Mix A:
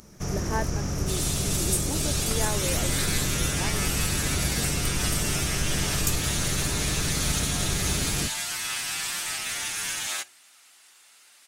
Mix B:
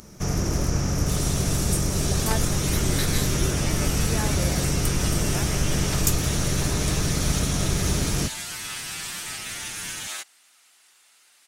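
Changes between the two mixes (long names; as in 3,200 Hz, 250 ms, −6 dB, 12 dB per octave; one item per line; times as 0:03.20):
speech: entry +1.75 s
first sound +5.0 dB
reverb: off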